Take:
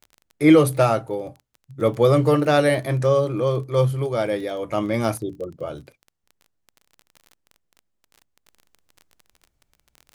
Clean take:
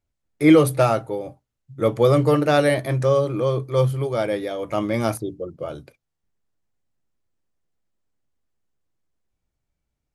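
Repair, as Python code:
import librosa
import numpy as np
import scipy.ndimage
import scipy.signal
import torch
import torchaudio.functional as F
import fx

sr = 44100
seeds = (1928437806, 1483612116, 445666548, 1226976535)

y = fx.fix_declick_ar(x, sr, threshold=6.5)
y = fx.fix_level(y, sr, at_s=8.46, step_db=-7.5)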